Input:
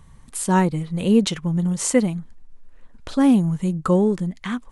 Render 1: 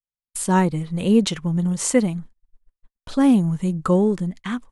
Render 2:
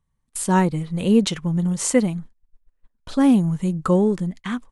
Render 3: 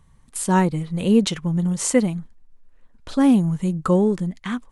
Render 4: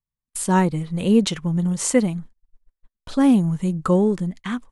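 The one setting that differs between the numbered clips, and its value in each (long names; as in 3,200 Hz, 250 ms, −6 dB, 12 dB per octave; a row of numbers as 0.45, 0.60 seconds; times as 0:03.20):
noise gate, range: −60, −26, −7, −44 decibels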